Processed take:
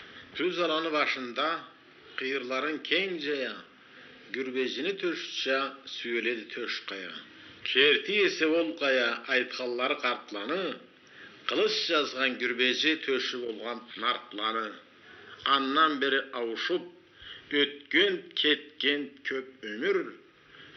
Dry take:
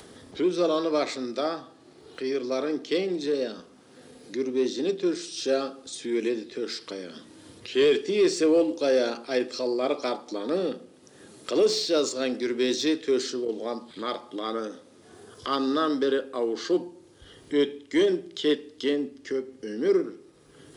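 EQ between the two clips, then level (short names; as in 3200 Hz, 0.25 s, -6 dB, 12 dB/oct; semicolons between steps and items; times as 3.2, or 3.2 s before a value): brick-wall FIR low-pass 6000 Hz; band shelf 2100 Hz +15.5 dB; -6.0 dB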